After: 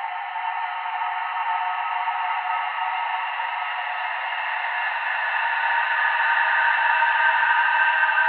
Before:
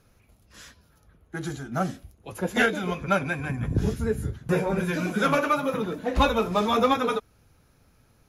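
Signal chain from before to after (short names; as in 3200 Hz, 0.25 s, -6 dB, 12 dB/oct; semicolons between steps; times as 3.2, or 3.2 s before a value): mistuned SSB +360 Hz 470–2800 Hz; Paulstretch 7.2×, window 1.00 s, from 4.36; gain +5.5 dB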